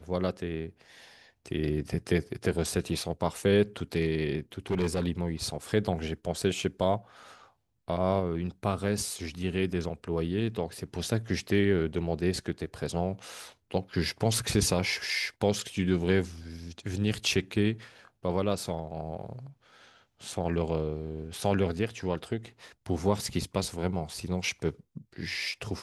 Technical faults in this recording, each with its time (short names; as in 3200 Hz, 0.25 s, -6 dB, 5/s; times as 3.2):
4.71–5.06 clipped -23.5 dBFS